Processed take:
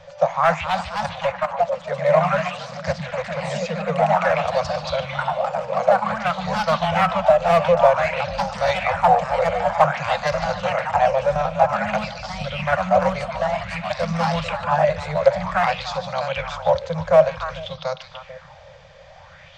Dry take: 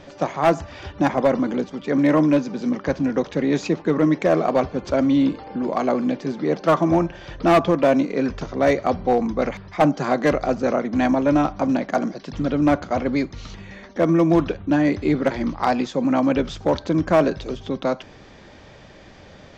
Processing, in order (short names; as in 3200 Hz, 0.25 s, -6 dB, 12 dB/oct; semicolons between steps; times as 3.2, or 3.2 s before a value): 0.81–1.59 level quantiser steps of 16 dB; Chebyshev band-stop 170–520 Hz, order 4; echoes that change speed 0.305 s, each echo +2 st, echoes 2; delay with a stepping band-pass 0.147 s, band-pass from 2900 Hz, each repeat -1.4 oct, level -4 dB; LFO bell 0.53 Hz 420–5100 Hz +11 dB; gain -2 dB